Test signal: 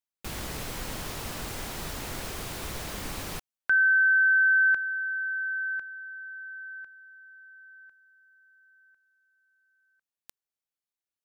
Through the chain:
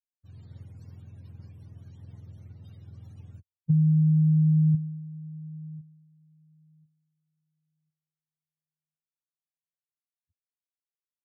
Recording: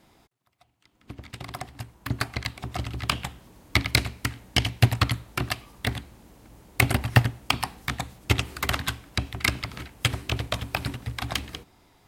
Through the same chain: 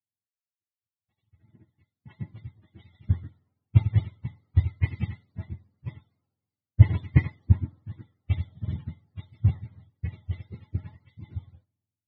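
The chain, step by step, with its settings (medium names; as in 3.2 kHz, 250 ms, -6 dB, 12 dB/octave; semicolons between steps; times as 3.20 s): spectrum inverted on a logarithmic axis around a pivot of 490 Hz; RIAA curve playback; three bands expanded up and down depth 100%; trim -17.5 dB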